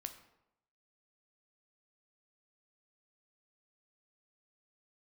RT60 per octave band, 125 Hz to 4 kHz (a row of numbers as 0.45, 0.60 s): 0.85, 0.80, 0.85, 0.80, 0.65, 0.55 s